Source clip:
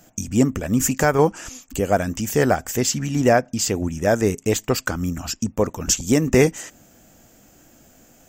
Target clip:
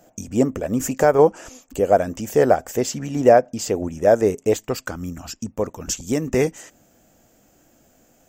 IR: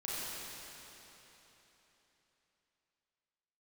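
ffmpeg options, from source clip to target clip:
-af "asetnsamples=nb_out_samples=441:pad=0,asendcmd='4.56 equalizer g 4',equalizer=frequency=550:width=0.83:gain=12,volume=-6.5dB"

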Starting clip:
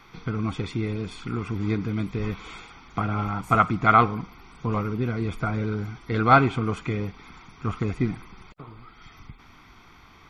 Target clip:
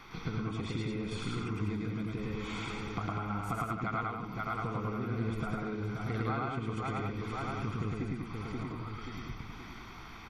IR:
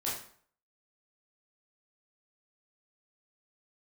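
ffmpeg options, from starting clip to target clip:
-filter_complex "[0:a]asplit=2[link_01][link_02];[link_02]aecho=0:1:528|1056|1584|2112:0.188|0.0772|0.0317|0.013[link_03];[link_01][link_03]amix=inputs=2:normalize=0,acompressor=threshold=-34dB:ratio=12,asplit=2[link_04][link_05];[link_05]aecho=0:1:107.9|198.3:0.891|0.562[link_06];[link_04][link_06]amix=inputs=2:normalize=0"

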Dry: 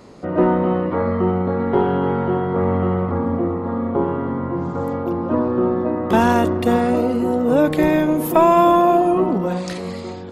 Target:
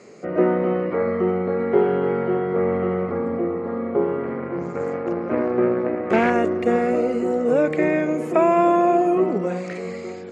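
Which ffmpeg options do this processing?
ffmpeg -i in.wav -filter_complex "[0:a]asettb=1/sr,asplit=3[link_01][link_02][link_03];[link_01]atrim=end=4.234[link_04];[link_02]atrim=start=4.23:end=6.3,asetpts=PTS-STARTPTS,afade=type=in:duration=0.004:curve=qsin,afade=type=out:start_time=2.066:duration=0.004:curve=qsin,aeval=exprs='0.708*(cos(1*acos(clip(val(0)/0.708,-1,1)))-cos(1*PI/2))+0.0794*(cos(5*acos(clip(val(0)/0.708,-1,1)))-cos(5*PI/2))+0.0891*(cos(6*acos(clip(val(0)/0.708,-1,1)))-cos(6*PI/2))+0.0708*(cos(7*acos(clip(val(0)/0.708,-1,1)))-cos(7*PI/2))':channel_layout=same[link_05];[link_03]atrim=start=6.296[link_06];[link_04][link_05]acrossfade=duration=0.004:curve1=hsin:curve2=qsin[link_07];[link_07][link_06]acrossfade=duration=0.004:curve1=qsin:curve2=hsin,highpass=180,equalizer=frequency=280:width_type=q:width=4:gain=-6,equalizer=frequency=420:width_type=q:width=4:gain=6,equalizer=frequency=940:width_type=q:width=4:gain=-9,equalizer=frequency=2200:width_type=q:width=4:gain=8,equalizer=frequency=3500:width_type=q:width=4:gain=-8,equalizer=frequency=7000:width_type=q:width=4:gain=8,lowpass=frequency=8700:width=0.5412,lowpass=frequency=8700:width=1.3066,acrossover=split=2700[link_08][link_09];[link_09]acompressor=threshold=-47dB:ratio=4:attack=1:release=60[link_10];[link_08][link_10]amix=inputs=2:normalize=0,volume=-2dB" out.wav

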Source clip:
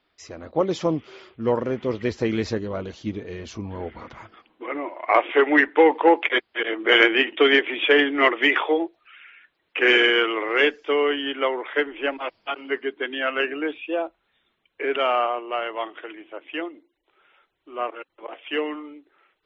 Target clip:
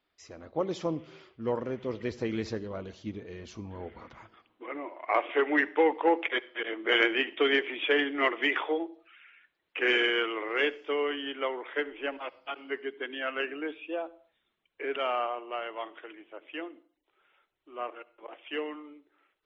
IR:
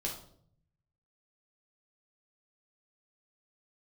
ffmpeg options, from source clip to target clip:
-filter_complex "[0:a]asplit=2[link_01][link_02];[1:a]atrim=start_sample=2205,afade=type=out:start_time=0.28:duration=0.01,atrim=end_sample=12789,adelay=64[link_03];[link_02][link_03]afir=irnorm=-1:irlink=0,volume=-22dB[link_04];[link_01][link_04]amix=inputs=2:normalize=0,volume=-8.5dB"

